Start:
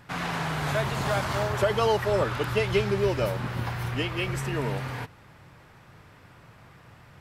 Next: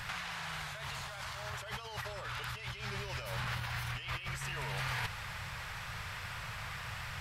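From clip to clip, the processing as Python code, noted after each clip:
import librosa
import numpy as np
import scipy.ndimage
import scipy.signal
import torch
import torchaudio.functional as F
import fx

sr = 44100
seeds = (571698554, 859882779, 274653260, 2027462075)

y = fx.tone_stack(x, sr, knobs='10-0-10')
y = fx.over_compress(y, sr, threshold_db=-49.0, ratio=-1.0)
y = fx.high_shelf(y, sr, hz=7300.0, db=-7.0)
y = y * 10.0 ** (9.0 / 20.0)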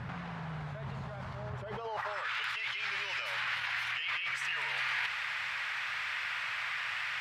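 y = fx.filter_sweep_bandpass(x, sr, from_hz=230.0, to_hz=2200.0, start_s=1.62, end_s=2.28, q=1.4)
y = fx.env_flatten(y, sr, amount_pct=50)
y = y * 10.0 ** (6.5 / 20.0)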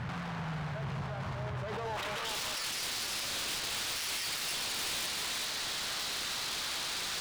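y = fx.self_delay(x, sr, depth_ms=0.48)
y = y + 10.0 ** (-6.5 / 20.0) * np.pad(y, (int(387 * sr / 1000.0), 0))[:len(y)]
y = np.clip(y, -10.0 ** (-37.0 / 20.0), 10.0 ** (-37.0 / 20.0))
y = y * 10.0 ** (4.0 / 20.0)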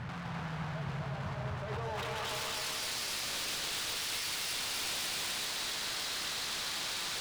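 y = fx.echo_feedback(x, sr, ms=251, feedback_pct=49, wet_db=-3)
y = y * 10.0 ** (-3.0 / 20.0)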